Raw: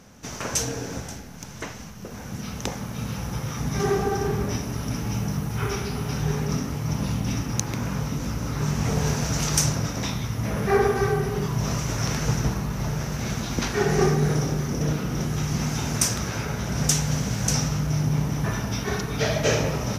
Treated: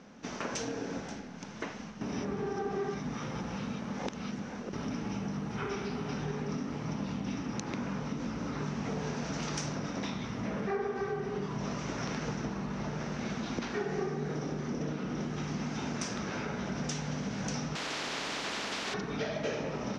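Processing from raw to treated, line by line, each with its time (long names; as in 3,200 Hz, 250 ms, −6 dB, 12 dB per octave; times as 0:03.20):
0:02.01–0:04.73: reverse
0:17.75–0:18.94: every bin compressed towards the loudest bin 10 to 1
whole clip: Bessel low-pass filter 3,900 Hz, order 4; low shelf with overshoot 150 Hz −10.5 dB, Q 1.5; downward compressor 4 to 1, threshold −30 dBFS; level −2.5 dB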